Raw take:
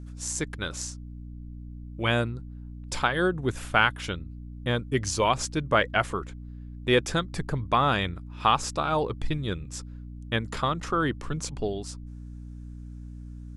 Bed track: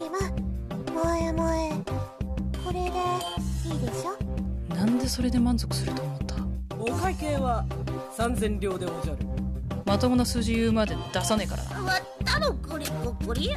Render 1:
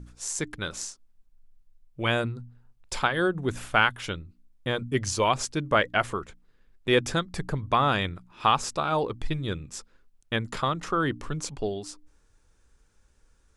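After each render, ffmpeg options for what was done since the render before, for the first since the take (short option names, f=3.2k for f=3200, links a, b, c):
-af "bandreject=f=60:t=h:w=4,bandreject=f=120:t=h:w=4,bandreject=f=180:t=h:w=4,bandreject=f=240:t=h:w=4,bandreject=f=300:t=h:w=4"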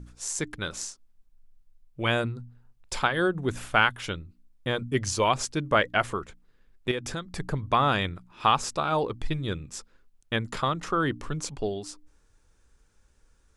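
-filter_complex "[0:a]asettb=1/sr,asplit=3[a][b][c];[a]atrim=end=6.914[d];[b]atrim=start=6.91:end=7.4,asetpts=PTS-STARTPTS,afade=t=in:d=0.004:c=qsin,afade=t=out:st=0.486:d=0.004:c=qsin,acompressor=threshold=-31dB:ratio=3:attack=3.2:release=140:knee=1:detection=peak[e];[c]atrim=start=7.396[f];[d][e]acrossfade=d=0.004:c1=hsin:c2=qsin[g];[g][f]acrossfade=d=0.004:c1=qsin:c2=hsin"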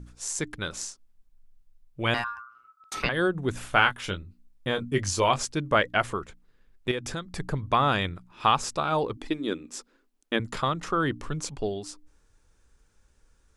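-filter_complex "[0:a]asettb=1/sr,asplit=3[a][b][c];[a]atrim=end=2.144[d];[b]atrim=start=2.14:end=3.09,asetpts=PTS-STARTPTS,afade=t=in:d=0.004:c=qsin,afade=t=out:st=0.946:d=0.004:c=qsin,aeval=exprs='val(0)*sin(2*PI*1300*n/s)':c=same[e];[c]atrim=start=3.086[f];[d][e]acrossfade=d=0.004:c1=hsin:c2=qsin[g];[g][f]acrossfade=d=0.004:c1=qsin:c2=hsin,asettb=1/sr,asplit=3[h][i][j];[h]atrim=end=3.704[k];[i]atrim=start=3.7:end=5.43,asetpts=PTS-STARTPTS,afade=t=in:d=0.004:c=qsin,afade=t=out:st=1.726:d=0.004:c=qsin,asplit=2[l][m];[m]adelay=21,volume=-8dB[n];[l][n]amix=inputs=2:normalize=0,atrim=end_sample=76293[o];[j]atrim=start=5.426[p];[k][o]acrossfade=d=0.004:c1=hsin:c2=qsin[q];[q][p]acrossfade=d=0.004:c1=qsin:c2=hsin,asettb=1/sr,asplit=3[r][s][t];[r]atrim=end=9.174[u];[s]atrim=start=9.17:end=10.4,asetpts=PTS-STARTPTS,afade=t=in:d=0.004:c=qsin,afade=t=out:st=1.226:d=0.004:c=qsin,lowshelf=f=180:t=q:w=3:g=-14[v];[t]atrim=start=10.396[w];[u][v]acrossfade=d=0.004:c1=hsin:c2=qsin[x];[x][w]acrossfade=d=0.004:c1=qsin:c2=hsin"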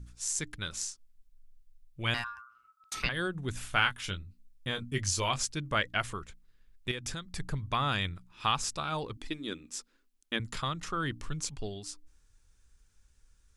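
-af "equalizer=f=520:w=0.38:g=-11.5"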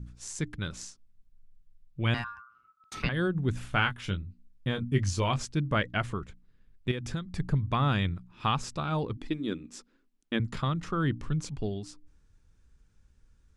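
-af "lowpass=f=3k:p=1,equalizer=f=170:w=0.44:g=9"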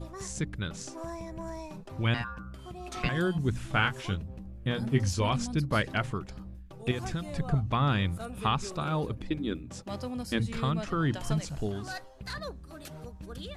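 -filter_complex "[1:a]volume=-13.5dB[a];[0:a][a]amix=inputs=2:normalize=0"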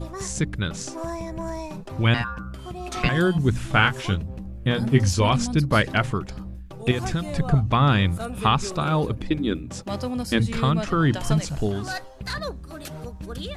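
-af "volume=8dB"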